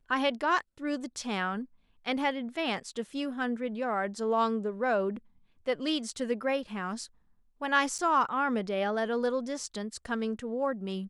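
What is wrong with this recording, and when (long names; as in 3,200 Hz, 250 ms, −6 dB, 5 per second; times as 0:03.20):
0:07.98–0:07.99: drop-out 7.8 ms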